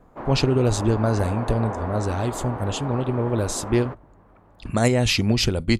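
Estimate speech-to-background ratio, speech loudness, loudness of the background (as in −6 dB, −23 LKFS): 10.5 dB, −23.0 LKFS, −33.5 LKFS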